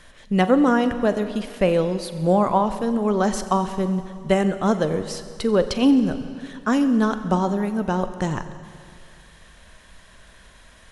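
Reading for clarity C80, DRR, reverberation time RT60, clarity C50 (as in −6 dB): 11.5 dB, 10.0 dB, 2.3 s, 11.5 dB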